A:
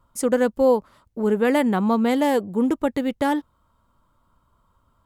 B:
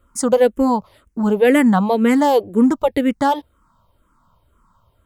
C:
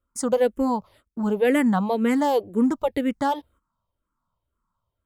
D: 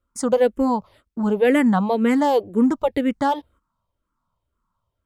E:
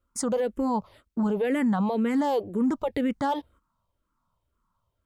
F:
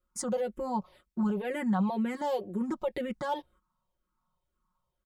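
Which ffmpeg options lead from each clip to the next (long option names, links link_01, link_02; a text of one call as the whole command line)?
ffmpeg -i in.wav -filter_complex "[0:a]asplit=2[link_01][link_02];[link_02]afreqshift=-2[link_03];[link_01][link_03]amix=inputs=2:normalize=1,volume=8dB" out.wav
ffmpeg -i in.wav -af "agate=range=-14dB:threshold=-46dB:ratio=16:detection=peak,volume=-6.5dB" out.wav
ffmpeg -i in.wav -af "highshelf=frequency=9400:gain=-8.5,volume=3dB" out.wav
ffmpeg -i in.wav -af "alimiter=limit=-18.5dB:level=0:latency=1:release=31" out.wav
ffmpeg -i in.wav -af "aecho=1:1:5.5:0.99,volume=-7.5dB" out.wav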